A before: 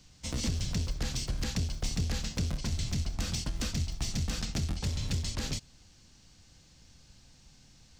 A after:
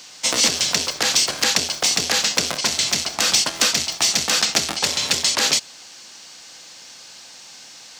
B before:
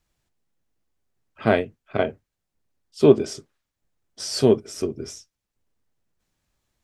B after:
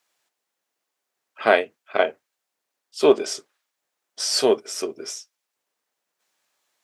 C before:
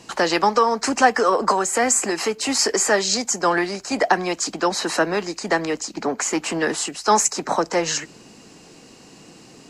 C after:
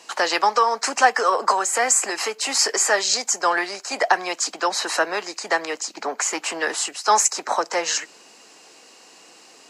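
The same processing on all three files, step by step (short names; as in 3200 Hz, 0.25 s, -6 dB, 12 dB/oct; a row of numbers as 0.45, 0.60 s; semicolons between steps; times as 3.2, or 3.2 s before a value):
HPF 590 Hz 12 dB/oct; normalise peaks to -3 dBFS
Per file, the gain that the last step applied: +21.0, +6.0, +1.0 dB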